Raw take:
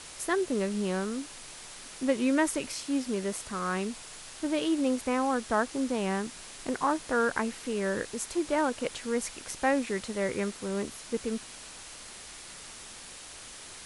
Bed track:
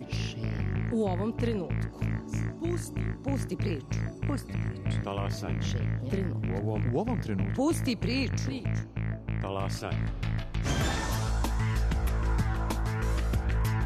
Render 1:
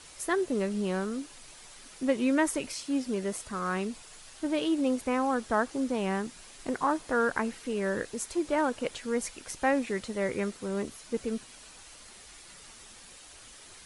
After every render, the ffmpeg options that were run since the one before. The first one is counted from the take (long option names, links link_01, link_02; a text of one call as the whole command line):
ffmpeg -i in.wav -af "afftdn=noise_reduction=7:noise_floor=-46" out.wav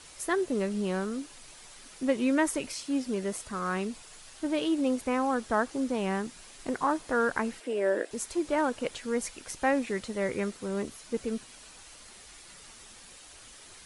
ffmpeg -i in.wav -filter_complex "[0:a]asettb=1/sr,asplit=3[link_01][link_02][link_03];[link_01]atrim=end=7.604[link_04];[link_02]atrim=start=7.6:end=8.11,asetpts=PTS-STARTPTS,afade=type=in:duration=0.004:curve=qsin,afade=type=out:start_time=0.506:duration=0.004:curve=qsin,highpass=frequency=260:width=0.5412,highpass=frequency=260:width=1.3066,equalizer=frequency=340:width_type=q:width=4:gain=5,equalizer=frequency=630:width_type=q:width=4:gain=10,equalizer=frequency=1200:width_type=q:width=4:gain=-5,equalizer=frequency=4200:width_type=q:width=4:gain=-6,equalizer=frequency=6300:width_type=q:width=4:gain=-9,lowpass=frequency=9600:width=0.5412,lowpass=frequency=9600:width=1.3066[link_05];[link_03]atrim=start=8.106[link_06];[link_04][link_05]acrossfade=duration=0.004:curve1=hsin:curve2=qsin[link_07];[link_07][link_06]acrossfade=duration=0.004:curve1=qsin:curve2=hsin" out.wav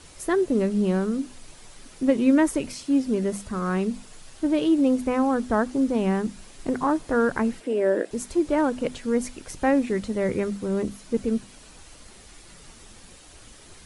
ffmpeg -i in.wav -af "lowshelf=frequency=440:gain=12,bandreject=frequency=50:width_type=h:width=6,bandreject=frequency=100:width_type=h:width=6,bandreject=frequency=150:width_type=h:width=6,bandreject=frequency=200:width_type=h:width=6,bandreject=frequency=250:width_type=h:width=6" out.wav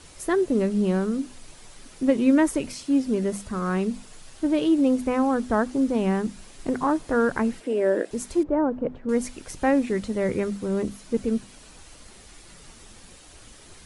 ffmpeg -i in.wav -filter_complex "[0:a]asettb=1/sr,asplit=3[link_01][link_02][link_03];[link_01]atrim=end=8.434[link_04];[link_02]atrim=start=8.43:end=9.09,asetpts=PTS-STARTPTS,afade=type=in:duration=0.004:curve=qsin,afade=type=out:start_time=0.656:duration=0.004:curve=qsin,lowpass=1000[link_05];[link_03]atrim=start=9.086[link_06];[link_04][link_05]acrossfade=duration=0.004:curve1=hsin:curve2=qsin[link_07];[link_07][link_06]acrossfade=duration=0.004:curve1=qsin:curve2=hsin" out.wav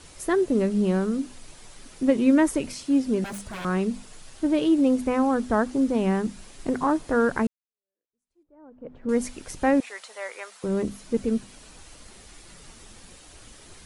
ffmpeg -i in.wav -filter_complex "[0:a]asettb=1/sr,asplit=3[link_01][link_02][link_03];[link_01]atrim=end=3.244[link_04];[link_02]atrim=start=3.24:end=3.65,asetpts=PTS-STARTPTS,afade=type=in:duration=0.004:curve=qsin,afade=type=out:start_time=0.406:duration=0.004:curve=qsin,aeval=exprs='0.0316*(abs(mod(val(0)/0.0316+3,4)-2)-1)':channel_layout=same[link_05];[link_03]atrim=start=3.646[link_06];[link_04][link_05]acrossfade=duration=0.004:curve1=hsin:curve2=qsin[link_07];[link_07][link_06]acrossfade=duration=0.004:curve1=qsin:curve2=hsin,asettb=1/sr,asplit=3[link_08][link_09][link_10];[link_08]atrim=end=9.804[link_11];[link_09]atrim=start=9.8:end=10.64,asetpts=PTS-STARTPTS,afade=type=in:duration=0.004:curve=qsin,afade=type=out:start_time=0.836:duration=0.004:curve=qsin,highpass=frequency=730:width=0.5412,highpass=frequency=730:width=1.3066[link_12];[link_10]atrim=start=10.636[link_13];[link_11][link_12]acrossfade=duration=0.004:curve1=hsin:curve2=qsin[link_14];[link_14][link_13]acrossfade=duration=0.004:curve1=qsin:curve2=hsin,asplit=2[link_15][link_16];[link_15]atrim=end=7.47,asetpts=PTS-STARTPTS,afade=type=out:start_time=7.466:duration=0.004:curve=hsin[link_17];[link_16]atrim=start=7.47,asetpts=PTS-STARTPTS,afade=type=in:duration=1.59:curve=exp[link_18];[link_17][link_18]concat=n=2:v=0:a=1" out.wav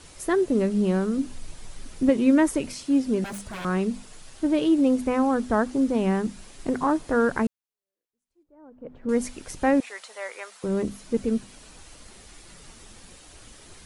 ffmpeg -i in.wav -filter_complex "[0:a]asettb=1/sr,asplit=3[link_01][link_02][link_03];[link_01]atrim=end=1.174[link_04];[link_02]atrim=start=1.17:end=2.09,asetpts=PTS-STARTPTS,afade=type=in:duration=0.004:curve=qsin,afade=type=out:start_time=0.916:duration=0.004:curve=qsin,lowshelf=frequency=150:gain=10[link_05];[link_03]atrim=start=2.086[link_06];[link_04][link_05]acrossfade=duration=0.004:curve1=hsin:curve2=qsin[link_07];[link_07][link_06]acrossfade=duration=0.004:curve1=qsin:curve2=hsin" out.wav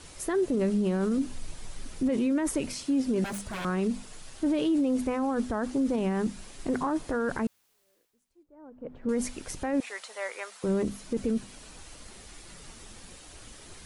ffmpeg -i in.wav -af "alimiter=limit=-20dB:level=0:latency=1:release=14,areverse,acompressor=mode=upward:threshold=-50dB:ratio=2.5,areverse" out.wav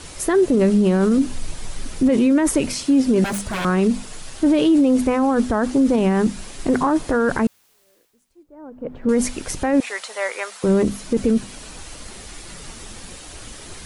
ffmpeg -i in.wav -af "volume=10.5dB" out.wav